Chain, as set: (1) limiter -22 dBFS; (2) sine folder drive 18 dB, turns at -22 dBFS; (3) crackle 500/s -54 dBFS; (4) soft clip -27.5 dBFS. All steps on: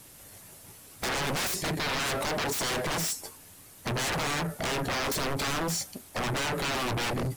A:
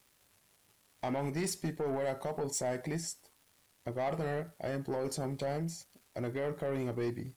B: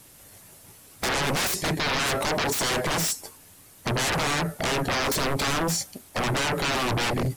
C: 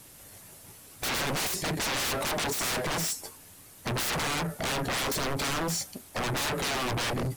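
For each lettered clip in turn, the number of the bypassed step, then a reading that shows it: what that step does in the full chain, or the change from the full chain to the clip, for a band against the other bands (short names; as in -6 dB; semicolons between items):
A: 2, crest factor change +5.5 dB; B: 4, distortion -15 dB; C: 1, mean gain reduction 1.5 dB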